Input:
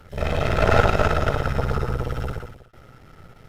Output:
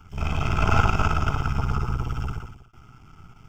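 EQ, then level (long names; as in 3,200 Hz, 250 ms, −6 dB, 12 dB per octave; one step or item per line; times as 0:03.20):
phaser with its sweep stopped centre 2,700 Hz, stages 8
0.0 dB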